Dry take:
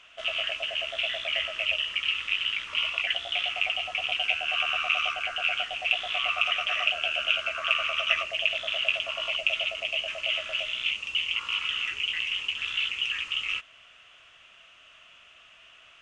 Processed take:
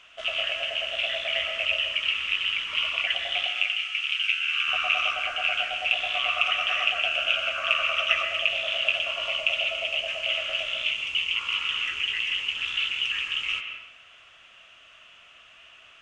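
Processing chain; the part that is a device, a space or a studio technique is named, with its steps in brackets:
0:03.47–0:04.68: Butterworth high-pass 1,300 Hz 36 dB per octave
filtered reverb send (on a send: high-pass filter 180 Hz 6 dB per octave + low-pass filter 3,500 Hz + convolution reverb RT60 0.85 s, pre-delay 117 ms, DRR 5 dB)
on the sum: level +1 dB

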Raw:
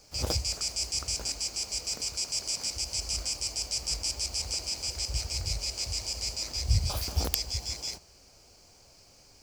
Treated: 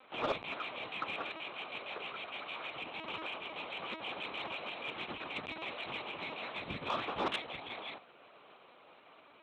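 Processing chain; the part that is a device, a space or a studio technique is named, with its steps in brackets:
talking toy (linear-prediction vocoder at 8 kHz; high-pass filter 360 Hz 12 dB per octave; parametric band 1,200 Hz +8 dB 0.56 octaves; soft clipping −29.5 dBFS, distortion −16 dB)
level +3.5 dB

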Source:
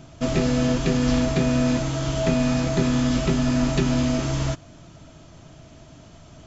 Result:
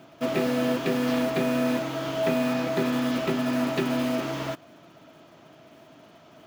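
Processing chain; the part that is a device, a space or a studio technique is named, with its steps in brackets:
early digital voice recorder (band-pass filter 280–3,400 Hz; one scale factor per block 5 bits)

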